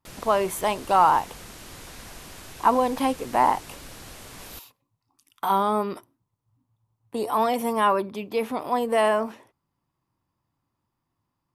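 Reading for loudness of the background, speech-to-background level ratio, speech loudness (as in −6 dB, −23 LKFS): −42.0 LKFS, 18.0 dB, −24.0 LKFS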